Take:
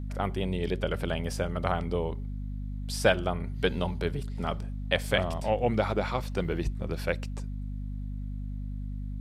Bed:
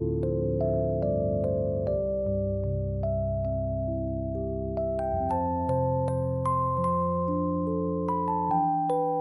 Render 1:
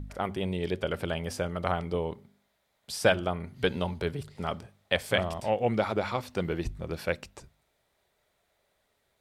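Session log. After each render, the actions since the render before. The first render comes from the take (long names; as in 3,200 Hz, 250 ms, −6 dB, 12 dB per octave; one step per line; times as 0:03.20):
hum removal 50 Hz, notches 5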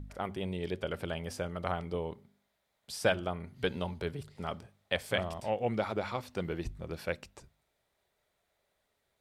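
level −5 dB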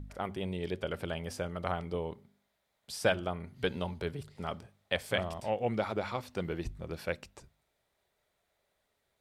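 no processing that can be heard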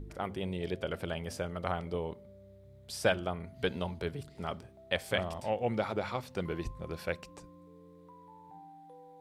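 mix in bed −27 dB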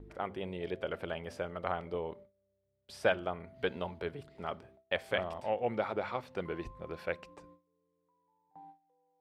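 noise gate with hold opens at −43 dBFS
bass and treble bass −8 dB, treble −13 dB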